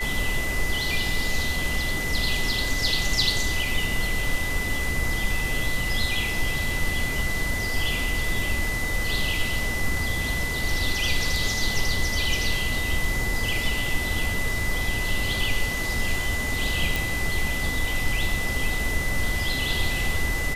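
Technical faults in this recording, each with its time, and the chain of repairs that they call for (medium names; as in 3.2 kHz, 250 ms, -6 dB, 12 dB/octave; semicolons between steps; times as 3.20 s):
whine 2 kHz -28 dBFS
16.96 s: pop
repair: de-click; band-stop 2 kHz, Q 30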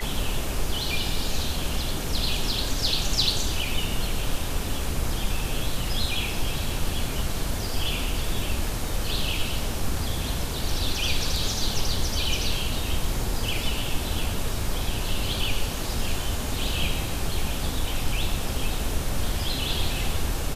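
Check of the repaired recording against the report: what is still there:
nothing left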